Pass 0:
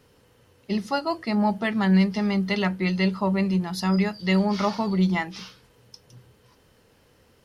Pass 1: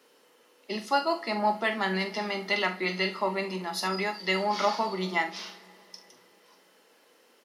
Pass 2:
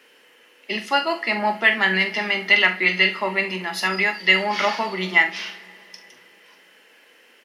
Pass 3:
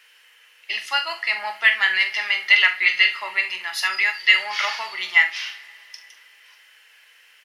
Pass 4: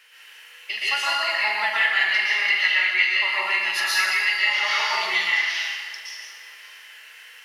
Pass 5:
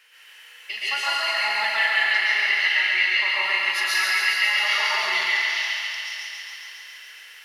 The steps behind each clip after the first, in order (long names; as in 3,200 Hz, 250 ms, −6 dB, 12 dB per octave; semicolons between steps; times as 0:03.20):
Bessel high-pass filter 380 Hz, order 8; ambience of single reflections 43 ms −11 dB, 72 ms −16.5 dB; convolution reverb, pre-delay 3 ms, DRR 8.5 dB
flat-topped bell 2,200 Hz +10 dB 1.2 octaves; level +3.5 dB
high-pass filter 1,400 Hz 12 dB per octave; level +2 dB
downward compressor 3 to 1, threshold −27 dBFS, peak gain reduction 13 dB; dense smooth reverb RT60 1.3 s, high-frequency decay 0.9×, pre-delay 105 ms, DRR −7 dB
feedback echo with a high-pass in the loop 138 ms, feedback 79%, high-pass 460 Hz, level −4.5 dB; level −2.5 dB